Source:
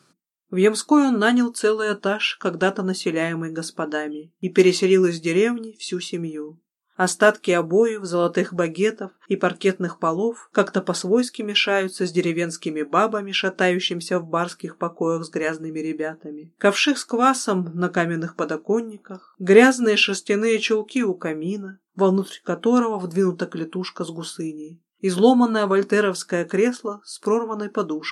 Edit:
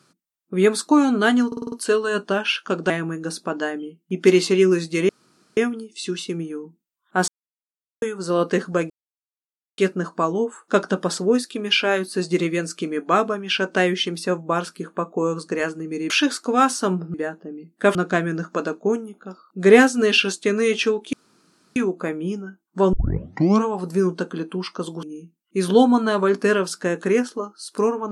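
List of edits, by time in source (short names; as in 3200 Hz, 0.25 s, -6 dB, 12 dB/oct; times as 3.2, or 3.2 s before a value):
1.47 stutter 0.05 s, 6 plays
2.65–3.22 cut
5.41 insert room tone 0.48 s
7.12–7.86 mute
8.74–9.62 mute
15.94–16.75 move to 17.79
20.97 insert room tone 0.63 s
22.14 tape start 0.72 s
24.24–24.51 cut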